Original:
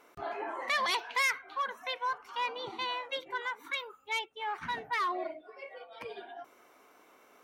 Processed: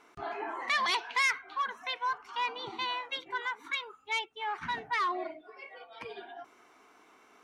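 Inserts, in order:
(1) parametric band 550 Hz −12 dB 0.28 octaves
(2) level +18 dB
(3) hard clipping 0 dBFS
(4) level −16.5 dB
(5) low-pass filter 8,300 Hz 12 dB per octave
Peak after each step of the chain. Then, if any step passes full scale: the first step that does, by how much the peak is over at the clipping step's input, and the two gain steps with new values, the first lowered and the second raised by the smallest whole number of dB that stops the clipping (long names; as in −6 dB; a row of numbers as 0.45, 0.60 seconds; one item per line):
−21.0, −3.0, −3.0, −19.5, −19.5 dBFS
no step passes full scale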